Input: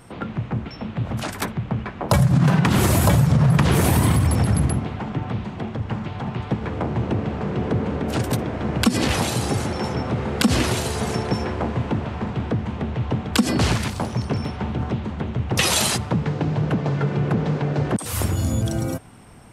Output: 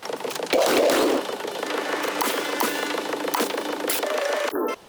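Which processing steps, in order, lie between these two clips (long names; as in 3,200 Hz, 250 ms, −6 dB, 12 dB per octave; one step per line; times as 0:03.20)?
time-frequency box erased 0:18.07–0:18.73, 450–2,700 Hz
dynamic equaliser 200 Hz, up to −5 dB, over −36 dBFS, Q 3.9
change of speed 4×
level −2 dB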